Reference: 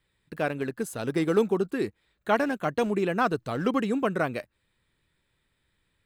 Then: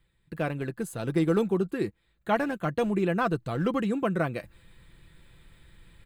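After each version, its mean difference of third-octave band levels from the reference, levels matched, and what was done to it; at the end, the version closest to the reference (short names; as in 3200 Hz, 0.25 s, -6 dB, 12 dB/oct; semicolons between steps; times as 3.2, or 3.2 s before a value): 2.5 dB: bell 5600 Hz -6 dB 0.3 oct; comb 5.9 ms, depth 36%; reverse; upward compressor, threshold -42 dBFS; reverse; low shelf 140 Hz +11.5 dB; gain -3 dB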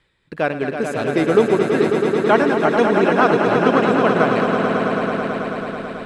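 8.0 dB: tone controls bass -4 dB, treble 0 dB; reverse; upward compressor, threshold -40 dBFS; reverse; air absorption 77 m; swelling echo 0.109 s, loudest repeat 5, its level -7.5 dB; gain +8.5 dB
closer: first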